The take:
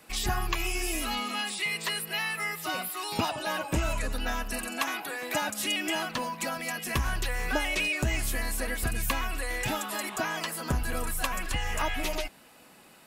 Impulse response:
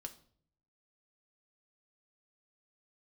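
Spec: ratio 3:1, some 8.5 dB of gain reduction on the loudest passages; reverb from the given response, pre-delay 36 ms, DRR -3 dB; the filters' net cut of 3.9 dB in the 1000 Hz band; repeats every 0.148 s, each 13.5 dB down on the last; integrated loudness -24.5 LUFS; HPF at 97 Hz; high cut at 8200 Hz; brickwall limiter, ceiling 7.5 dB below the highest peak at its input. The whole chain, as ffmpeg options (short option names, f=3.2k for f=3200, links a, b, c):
-filter_complex "[0:a]highpass=97,lowpass=8.2k,equalizer=f=1k:t=o:g=-5,acompressor=threshold=-38dB:ratio=3,alimiter=level_in=6dB:limit=-24dB:level=0:latency=1,volume=-6dB,aecho=1:1:148|296:0.211|0.0444,asplit=2[a][b];[1:a]atrim=start_sample=2205,adelay=36[c];[b][c]afir=irnorm=-1:irlink=0,volume=7.5dB[d];[a][d]amix=inputs=2:normalize=0,volume=10dB"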